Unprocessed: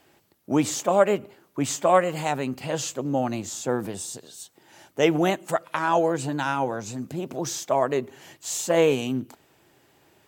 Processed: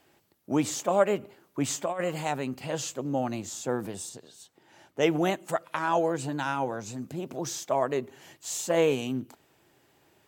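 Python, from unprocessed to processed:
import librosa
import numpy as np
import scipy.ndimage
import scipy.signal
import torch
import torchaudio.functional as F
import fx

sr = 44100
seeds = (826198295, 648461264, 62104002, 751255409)

y = fx.over_compress(x, sr, threshold_db=-21.0, ratio=-0.5, at=(1.15, 2.16), fade=0.02)
y = fx.high_shelf(y, sr, hz=6000.0, db=-9.5, at=(4.09, 5.01))
y = y * 10.0 ** (-4.0 / 20.0)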